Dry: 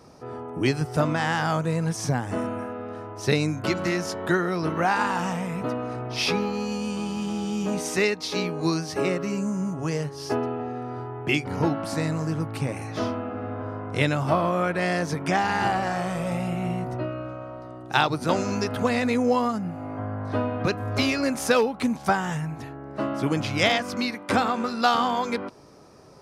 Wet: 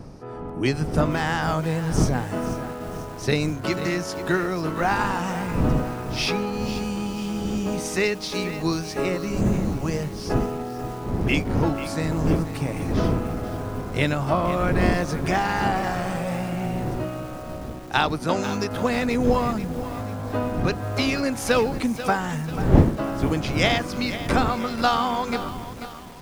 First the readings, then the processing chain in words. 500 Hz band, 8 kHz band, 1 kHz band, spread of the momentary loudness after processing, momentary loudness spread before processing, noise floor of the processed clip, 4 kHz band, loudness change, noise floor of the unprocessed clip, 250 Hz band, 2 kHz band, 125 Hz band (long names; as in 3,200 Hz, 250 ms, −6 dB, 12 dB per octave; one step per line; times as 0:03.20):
+1.0 dB, +0.5 dB, +0.5 dB, 8 LU, 10 LU, −35 dBFS, +0.5 dB, +1.5 dB, −40 dBFS, +2.0 dB, +0.5 dB, +3.5 dB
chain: wind on the microphone 240 Hz −29 dBFS
feedback echo at a low word length 489 ms, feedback 55%, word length 6 bits, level −11.5 dB